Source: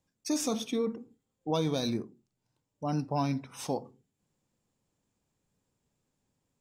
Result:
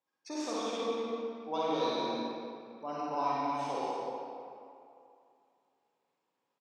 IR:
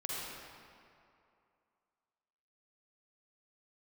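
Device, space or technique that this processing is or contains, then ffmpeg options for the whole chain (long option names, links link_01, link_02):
station announcement: -filter_complex "[0:a]highpass=440,lowpass=4100,equalizer=frequency=1000:width_type=o:width=0.49:gain=4.5,aecho=1:1:55.39|239.1:0.562|0.501[link_01];[1:a]atrim=start_sample=2205[link_02];[link_01][link_02]afir=irnorm=-1:irlink=0,volume=-2.5dB"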